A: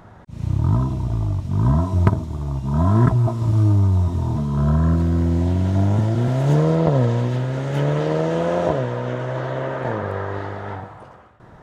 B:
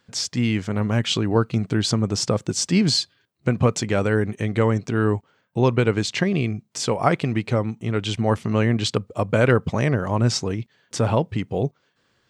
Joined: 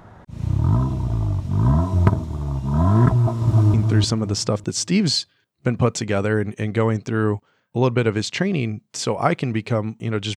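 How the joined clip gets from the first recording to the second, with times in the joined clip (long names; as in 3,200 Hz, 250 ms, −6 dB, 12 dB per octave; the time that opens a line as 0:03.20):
A
0:03.17–0:03.74: delay throw 300 ms, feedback 30%, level −4 dB
0:03.74: continue with B from 0:01.55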